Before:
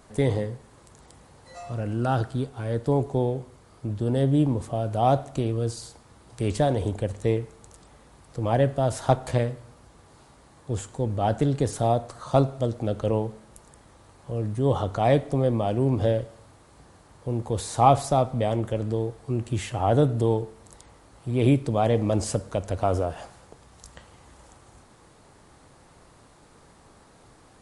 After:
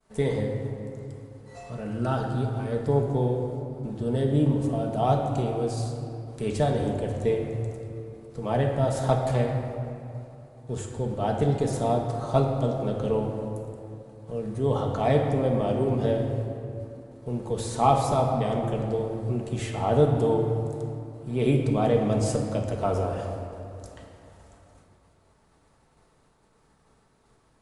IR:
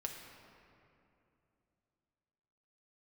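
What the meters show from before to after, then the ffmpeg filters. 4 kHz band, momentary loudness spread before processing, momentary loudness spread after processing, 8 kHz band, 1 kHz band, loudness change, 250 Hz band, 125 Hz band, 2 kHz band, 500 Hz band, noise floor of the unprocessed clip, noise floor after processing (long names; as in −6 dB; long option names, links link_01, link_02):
−2.0 dB, 12 LU, 15 LU, −2.5 dB, −1.5 dB, −1.5 dB, −0.5 dB, −1.0 dB, −1.0 dB, 0.0 dB, −55 dBFS, −63 dBFS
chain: -filter_complex "[0:a]agate=range=-33dB:threshold=-46dB:ratio=3:detection=peak[link_01];[1:a]atrim=start_sample=2205[link_02];[link_01][link_02]afir=irnorm=-1:irlink=0"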